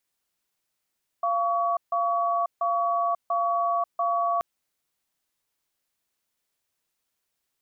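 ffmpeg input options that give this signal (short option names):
-f lavfi -i "aevalsrc='0.0596*(sin(2*PI*691*t)+sin(2*PI*1130*t))*clip(min(mod(t,0.69),0.54-mod(t,0.69))/0.005,0,1)':d=3.18:s=44100"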